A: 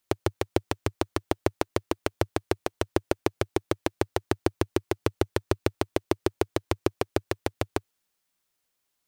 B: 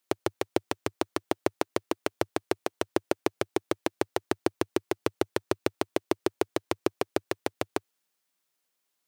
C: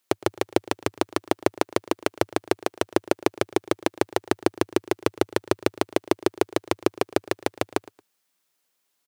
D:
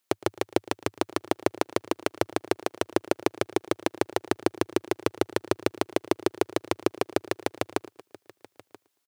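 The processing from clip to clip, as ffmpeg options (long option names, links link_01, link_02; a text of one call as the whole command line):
ffmpeg -i in.wav -af "highpass=180,volume=-1dB" out.wav
ffmpeg -i in.wav -af "aecho=1:1:113|226:0.0841|0.0244,volume=5dB" out.wav
ffmpeg -i in.wav -af "aecho=1:1:982:0.0794,volume=-3dB" out.wav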